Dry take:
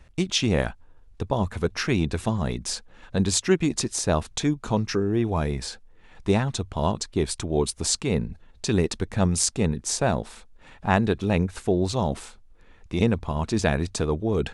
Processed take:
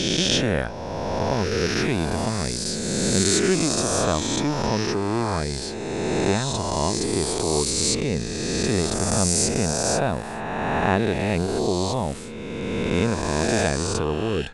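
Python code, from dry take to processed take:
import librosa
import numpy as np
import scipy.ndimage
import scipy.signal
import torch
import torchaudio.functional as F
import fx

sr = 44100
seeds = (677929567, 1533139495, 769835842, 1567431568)

y = fx.spec_swells(x, sr, rise_s=2.72)
y = fx.high_shelf(y, sr, hz=9500.0, db=8.0, at=(12.94, 13.69))
y = F.gain(torch.from_numpy(y), -3.0).numpy()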